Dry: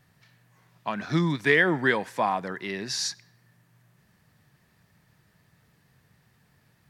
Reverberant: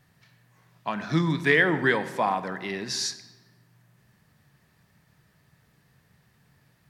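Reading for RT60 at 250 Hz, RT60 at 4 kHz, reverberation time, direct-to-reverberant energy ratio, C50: 1.7 s, 0.90 s, 1.3 s, 11.0 dB, 14.0 dB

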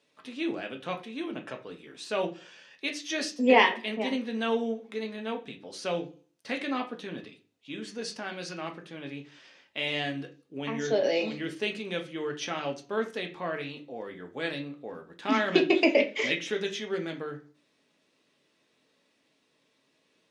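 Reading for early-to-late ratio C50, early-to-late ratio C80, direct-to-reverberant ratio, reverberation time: 13.0 dB, 18.5 dB, 2.5 dB, 0.40 s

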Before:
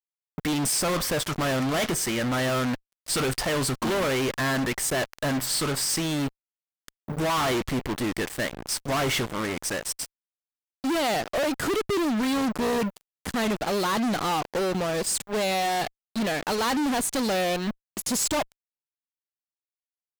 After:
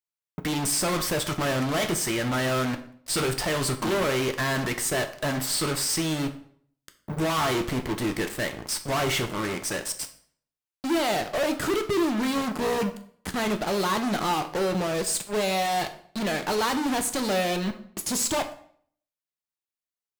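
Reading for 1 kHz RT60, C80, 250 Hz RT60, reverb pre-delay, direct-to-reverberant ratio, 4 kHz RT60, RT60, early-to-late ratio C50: 0.55 s, 16.0 dB, 0.60 s, 4 ms, 6.0 dB, 0.45 s, 0.55 s, 12.5 dB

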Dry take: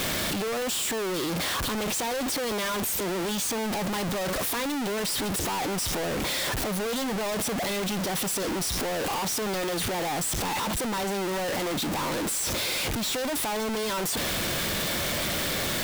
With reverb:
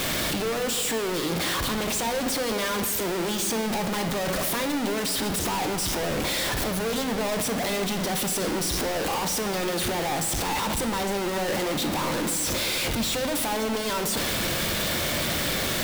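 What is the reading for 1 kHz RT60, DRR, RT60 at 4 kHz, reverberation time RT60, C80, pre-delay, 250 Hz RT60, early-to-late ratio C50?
1.4 s, 7.0 dB, 1.5 s, 1.7 s, 10.5 dB, 13 ms, 2.7 s, 9.0 dB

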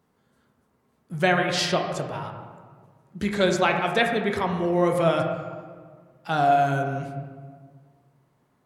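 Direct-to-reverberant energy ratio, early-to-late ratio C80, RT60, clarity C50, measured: 3.0 dB, 6.5 dB, 1.7 s, 5.0 dB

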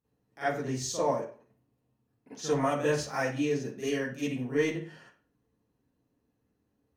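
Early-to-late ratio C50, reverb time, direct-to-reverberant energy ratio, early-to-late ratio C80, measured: 0.0 dB, 0.45 s, −13.0 dB, 8.0 dB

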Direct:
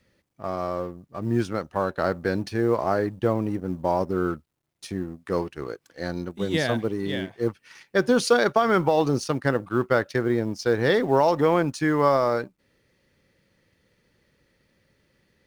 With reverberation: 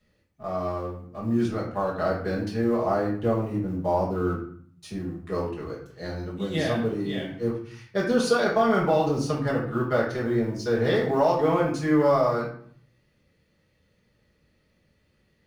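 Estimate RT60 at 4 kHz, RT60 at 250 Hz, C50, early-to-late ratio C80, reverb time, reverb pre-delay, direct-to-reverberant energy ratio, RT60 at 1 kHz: 0.40 s, 0.90 s, 5.0 dB, 9.5 dB, 0.55 s, 5 ms, −7.0 dB, 0.60 s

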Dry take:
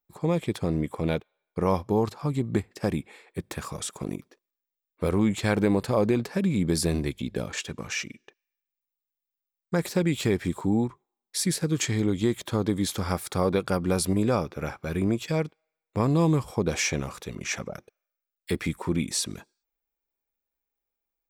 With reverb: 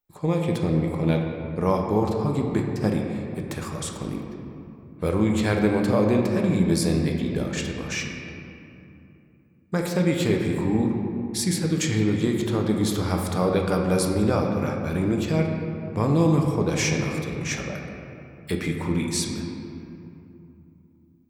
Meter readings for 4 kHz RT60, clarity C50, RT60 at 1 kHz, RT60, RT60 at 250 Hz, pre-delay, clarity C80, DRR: 1.5 s, 3.0 dB, 2.7 s, 2.8 s, 3.9 s, 7 ms, 4.0 dB, 1.0 dB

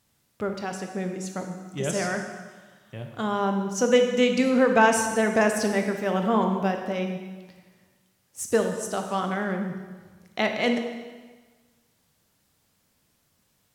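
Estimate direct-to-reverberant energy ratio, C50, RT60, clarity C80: 4.0 dB, 6.0 dB, 1.4 s, 7.5 dB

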